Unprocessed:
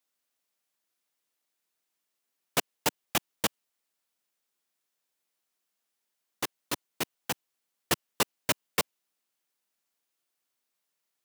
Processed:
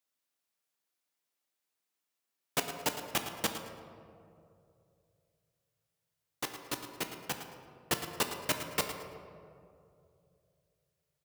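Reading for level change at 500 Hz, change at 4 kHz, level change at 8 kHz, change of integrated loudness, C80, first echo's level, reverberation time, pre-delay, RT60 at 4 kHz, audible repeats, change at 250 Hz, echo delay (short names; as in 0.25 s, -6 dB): -2.5 dB, -3.5 dB, -4.0 dB, -3.5 dB, 6.5 dB, -11.5 dB, 2.7 s, 7 ms, 1.1 s, 2, -3.0 dB, 0.11 s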